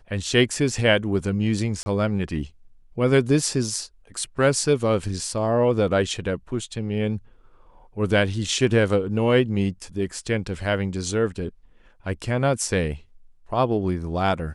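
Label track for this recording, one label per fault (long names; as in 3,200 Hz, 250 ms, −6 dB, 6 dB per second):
1.830000	1.860000	drop-out 30 ms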